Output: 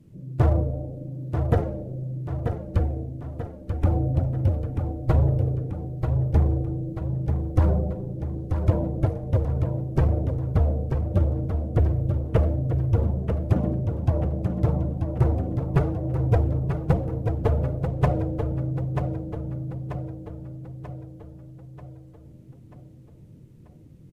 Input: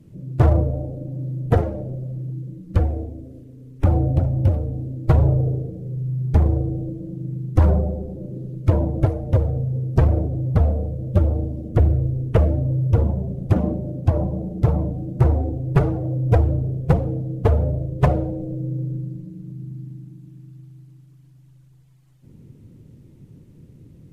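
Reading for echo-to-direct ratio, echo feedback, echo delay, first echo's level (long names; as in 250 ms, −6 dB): −5.0 dB, 51%, 937 ms, −6.5 dB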